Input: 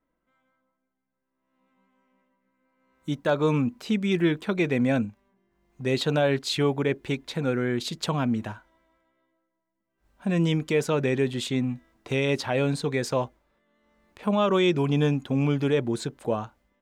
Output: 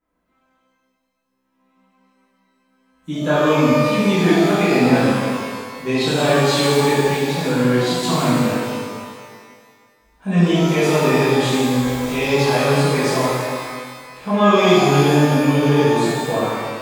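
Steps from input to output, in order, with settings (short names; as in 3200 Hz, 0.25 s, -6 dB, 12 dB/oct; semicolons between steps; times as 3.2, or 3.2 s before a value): 11.69–12.14 zero-crossing step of -34.5 dBFS; shimmer reverb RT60 1.8 s, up +12 st, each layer -8 dB, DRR -12 dB; gain -3.5 dB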